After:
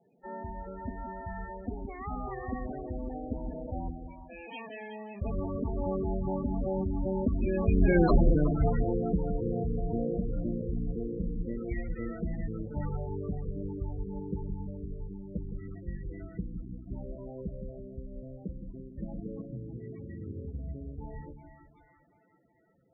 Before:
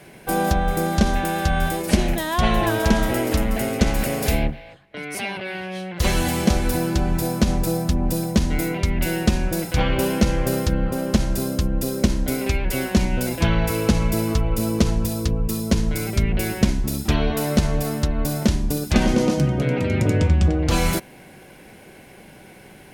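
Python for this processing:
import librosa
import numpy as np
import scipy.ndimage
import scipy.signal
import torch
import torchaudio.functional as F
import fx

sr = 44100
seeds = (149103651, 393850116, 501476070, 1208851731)

p1 = fx.doppler_pass(x, sr, speed_mps=45, closest_m=7.7, pass_at_s=8.04)
p2 = fx.lowpass(p1, sr, hz=2500.0, slope=6)
p3 = fx.low_shelf(p2, sr, hz=360.0, db=-3.5)
p4 = fx.over_compress(p3, sr, threshold_db=-47.0, ratio=-1.0)
p5 = p3 + (p4 * librosa.db_to_amplitude(0.5))
p6 = (np.mod(10.0 ** (18.0 / 20.0) * p5 + 1.0, 2.0) - 1.0) / 10.0 ** (18.0 / 20.0)
p7 = p6 + fx.echo_split(p6, sr, split_hz=670.0, low_ms=165, high_ms=370, feedback_pct=52, wet_db=-8, dry=0)
p8 = fx.spec_topn(p7, sr, count=16)
y = p8 * librosa.db_to_amplitude(6.5)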